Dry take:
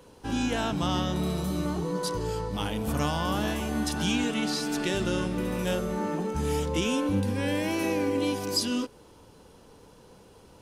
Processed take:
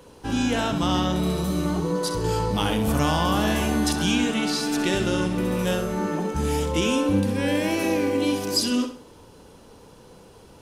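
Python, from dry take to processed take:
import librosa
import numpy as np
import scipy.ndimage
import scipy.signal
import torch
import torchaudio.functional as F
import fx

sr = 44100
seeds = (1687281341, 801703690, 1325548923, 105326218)

p1 = x + fx.echo_feedback(x, sr, ms=65, feedback_pct=34, wet_db=-9, dry=0)
p2 = fx.env_flatten(p1, sr, amount_pct=50, at=(2.24, 3.93))
y = p2 * librosa.db_to_amplitude(4.0)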